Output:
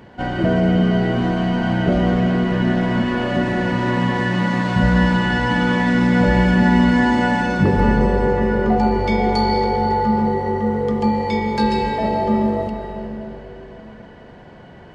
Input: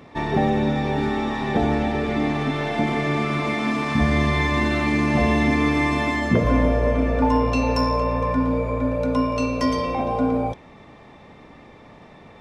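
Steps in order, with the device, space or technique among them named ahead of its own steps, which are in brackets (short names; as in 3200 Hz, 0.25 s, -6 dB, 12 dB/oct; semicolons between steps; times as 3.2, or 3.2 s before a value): slowed and reverbed (varispeed -17%; reverb RT60 3.9 s, pre-delay 0.117 s, DRR 4.5 dB); gain +2 dB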